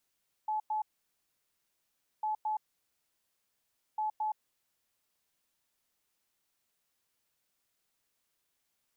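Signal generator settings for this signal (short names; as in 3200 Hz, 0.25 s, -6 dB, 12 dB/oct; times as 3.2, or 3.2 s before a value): beep pattern sine 859 Hz, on 0.12 s, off 0.10 s, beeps 2, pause 1.41 s, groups 3, -29.5 dBFS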